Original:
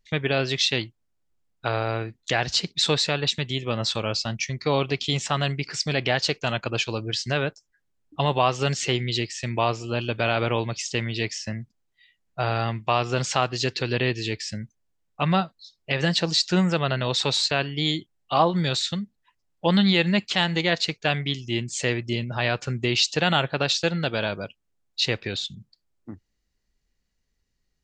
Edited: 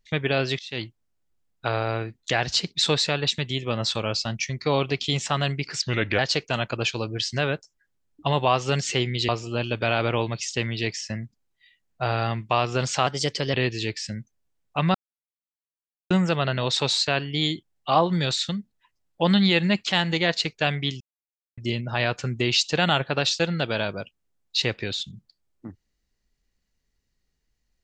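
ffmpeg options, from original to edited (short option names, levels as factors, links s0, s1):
-filter_complex "[0:a]asplit=11[s0][s1][s2][s3][s4][s5][s6][s7][s8][s9][s10];[s0]atrim=end=0.59,asetpts=PTS-STARTPTS,afade=t=out:st=0.586:d=0.004:c=hsin:silence=0.0707946[s11];[s1]atrim=start=0.59:end=5.824,asetpts=PTS-STARTPTS,afade=t=in:d=0.25:c=qua:silence=0.0707946[s12];[s2]atrim=start=5.82:end=6.12,asetpts=PTS-STARTPTS,asetrate=36162,aresample=44100,atrim=end_sample=16134,asetpts=PTS-STARTPTS[s13];[s3]atrim=start=6.116:end=9.222[s14];[s4]atrim=start=9.658:end=13.444[s15];[s5]atrim=start=13.44:end=13.97,asetpts=PTS-STARTPTS,asetrate=49833,aresample=44100,atrim=end_sample=20684,asetpts=PTS-STARTPTS[s16];[s6]atrim=start=13.966:end=15.38,asetpts=PTS-STARTPTS,afade=t=out:st=1.41:d=0.004:c=hsin[s17];[s7]atrim=start=15.38:end=16.54,asetpts=PTS-STARTPTS,volume=0[s18];[s8]atrim=start=16.54:end=21.44,asetpts=PTS-STARTPTS,afade=t=in:d=0.004:c=hsin,afade=t=out:st=4.896:d=0.004:c=hsin[s19];[s9]atrim=start=21.44:end=22.01,asetpts=PTS-STARTPTS,volume=0[s20];[s10]atrim=start=22.01,asetpts=PTS-STARTPTS,afade=t=in:d=0.004:c=hsin[s21];[s11][s12]concat=n=2:v=0:a=1[s22];[s22][s13]acrossfade=d=0.004:c1=hsin:c2=hsin[s23];[s23][s14]acrossfade=d=0.004:c1=hsin:c2=hsin[s24];[s24][s15]acrossfade=d=0.004:c1=hsin:c2=hsin[s25];[s25][s16]acrossfade=d=0.004:c1=hsin:c2=hsin[s26];[s17][s18][s19][s20][s21]concat=n=5:v=0:a=1[s27];[s26][s27]acrossfade=d=0.004:c1=hsin:c2=hsin"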